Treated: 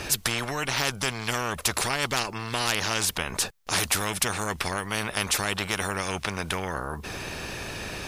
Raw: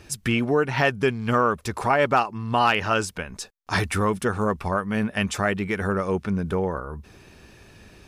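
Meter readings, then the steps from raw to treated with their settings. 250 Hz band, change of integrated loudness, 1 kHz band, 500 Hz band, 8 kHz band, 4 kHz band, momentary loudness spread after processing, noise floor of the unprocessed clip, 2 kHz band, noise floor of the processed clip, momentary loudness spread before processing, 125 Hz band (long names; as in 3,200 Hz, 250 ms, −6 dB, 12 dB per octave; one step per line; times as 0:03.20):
−9.0 dB, −3.5 dB, −6.5 dB, −9.0 dB, +9.5 dB, +5.5 dB, 9 LU, −51 dBFS, −1.5 dB, −42 dBFS, 9 LU, −6.5 dB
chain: low shelf with overshoot 180 Hz +6.5 dB, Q 1.5
every bin compressed towards the loudest bin 4 to 1
level +2.5 dB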